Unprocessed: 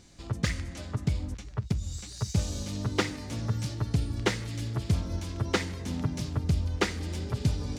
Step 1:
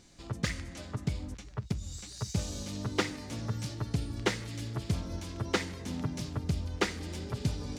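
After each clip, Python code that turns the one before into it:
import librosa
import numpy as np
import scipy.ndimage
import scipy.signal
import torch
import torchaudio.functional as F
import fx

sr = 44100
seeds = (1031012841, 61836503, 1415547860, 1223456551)

y = fx.peak_eq(x, sr, hz=72.0, db=-5.0, octaves=1.7)
y = y * librosa.db_to_amplitude(-2.0)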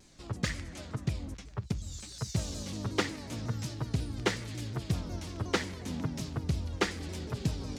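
y = fx.vibrato_shape(x, sr, shape='saw_down', rate_hz=5.5, depth_cents=160.0)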